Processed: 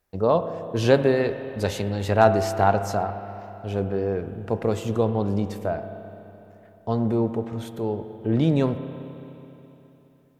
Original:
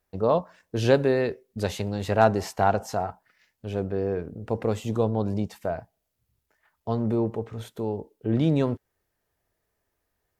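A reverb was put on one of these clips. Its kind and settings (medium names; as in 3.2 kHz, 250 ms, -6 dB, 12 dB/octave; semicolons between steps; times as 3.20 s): spring tank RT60 3.3 s, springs 30/42 ms, chirp 75 ms, DRR 9 dB; trim +2 dB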